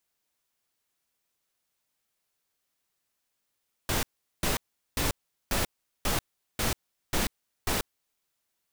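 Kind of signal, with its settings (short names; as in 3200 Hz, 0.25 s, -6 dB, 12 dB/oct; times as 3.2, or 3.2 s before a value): noise bursts pink, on 0.14 s, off 0.40 s, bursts 8, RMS -27 dBFS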